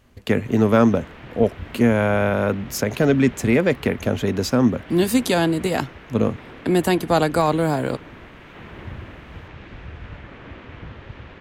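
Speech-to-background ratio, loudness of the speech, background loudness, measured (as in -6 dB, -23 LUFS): 19.5 dB, -20.5 LUFS, -40.0 LUFS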